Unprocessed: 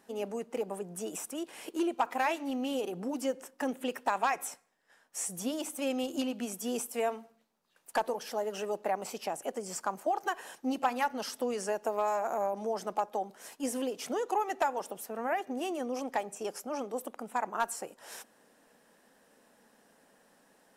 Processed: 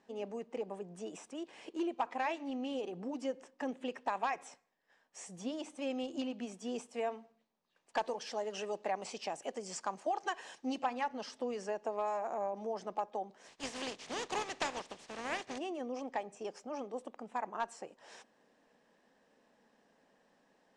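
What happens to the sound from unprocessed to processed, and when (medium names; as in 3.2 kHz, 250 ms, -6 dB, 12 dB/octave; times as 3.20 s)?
7.97–10.83 s: treble shelf 2.2 kHz +9 dB
13.47–15.57 s: spectral contrast reduction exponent 0.39
whole clip: Bessel low-pass 4.9 kHz, order 8; peaking EQ 1.4 kHz -6.5 dB 0.2 oct; trim -5 dB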